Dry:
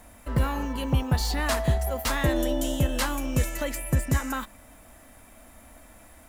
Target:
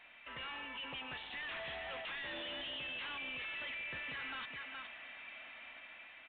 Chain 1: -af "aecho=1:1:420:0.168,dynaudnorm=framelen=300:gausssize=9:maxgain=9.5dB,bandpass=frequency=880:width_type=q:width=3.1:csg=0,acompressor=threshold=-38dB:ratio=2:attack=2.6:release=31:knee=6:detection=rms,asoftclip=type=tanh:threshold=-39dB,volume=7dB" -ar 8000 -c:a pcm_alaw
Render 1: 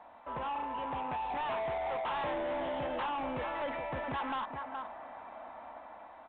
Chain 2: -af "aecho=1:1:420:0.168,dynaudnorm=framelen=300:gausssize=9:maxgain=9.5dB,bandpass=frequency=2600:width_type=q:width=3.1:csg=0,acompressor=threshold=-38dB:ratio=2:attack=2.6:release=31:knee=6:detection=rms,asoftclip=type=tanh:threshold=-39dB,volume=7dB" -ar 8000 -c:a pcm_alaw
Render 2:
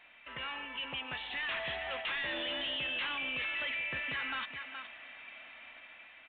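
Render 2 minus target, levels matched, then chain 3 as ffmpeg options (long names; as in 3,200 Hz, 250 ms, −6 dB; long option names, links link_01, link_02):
soft clipping: distortion −6 dB
-af "aecho=1:1:420:0.168,dynaudnorm=framelen=300:gausssize=9:maxgain=9.5dB,bandpass=frequency=2600:width_type=q:width=3.1:csg=0,acompressor=threshold=-38dB:ratio=2:attack=2.6:release=31:knee=6:detection=rms,asoftclip=type=tanh:threshold=-48.5dB,volume=7dB" -ar 8000 -c:a pcm_alaw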